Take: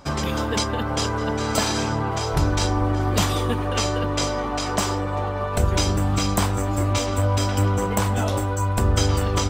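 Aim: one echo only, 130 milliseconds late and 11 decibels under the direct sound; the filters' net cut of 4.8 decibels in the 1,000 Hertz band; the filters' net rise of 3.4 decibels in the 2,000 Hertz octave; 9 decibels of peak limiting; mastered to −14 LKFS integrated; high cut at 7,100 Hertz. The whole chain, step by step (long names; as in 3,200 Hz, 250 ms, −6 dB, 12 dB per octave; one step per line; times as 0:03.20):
low-pass filter 7,100 Hz
parametric band 1,000 Hz −8 dB
parametric band 2,000 Hz +7.5 dB
brickwall limiter −16.5 dBFS
single-tap delay 130 ms −11 dB
level +11.5 dB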